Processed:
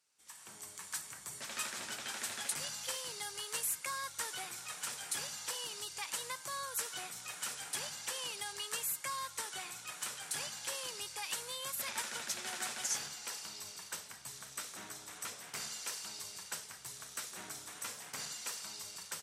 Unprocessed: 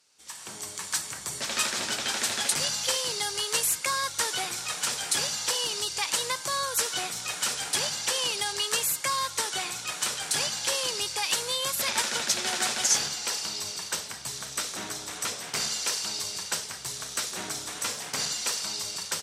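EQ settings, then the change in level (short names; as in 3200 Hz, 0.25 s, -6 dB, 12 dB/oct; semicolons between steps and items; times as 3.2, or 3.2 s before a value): HPF 150 Hz 6 dB/oct; bell 420 Hz -7.5 dB 2.9 oct; bell 4600 Hz -8.5 dB 1.9 oct; -6.0 dB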